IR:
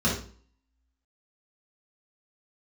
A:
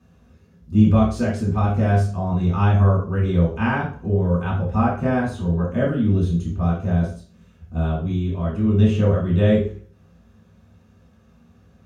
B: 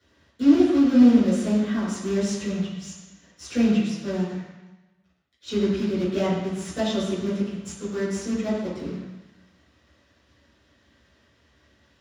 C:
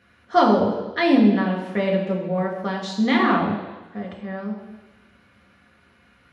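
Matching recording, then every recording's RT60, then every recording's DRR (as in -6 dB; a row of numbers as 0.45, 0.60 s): A; 0.45 s, 1.0 s, not exponential; -7.0, -13.0, -2.0 dB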